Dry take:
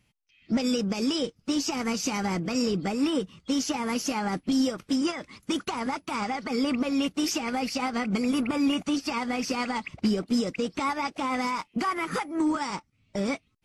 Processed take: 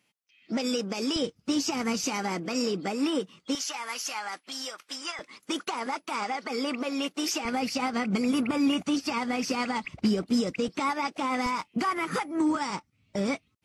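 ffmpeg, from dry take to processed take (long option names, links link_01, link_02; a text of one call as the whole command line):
ffmpeg -i in.wav -af "asetnsamples=nb_out_samples=441:pad=0,asendcmd='1.16 highpass f 72;2.04 highpass f 250;3.55 highpass f 1000;5.19 highpass f 350;7.45 highpass f 86;9.84 highpass f 42;10.68 highpass f 160;11.46 highpass f 63',highpass=280" out.wav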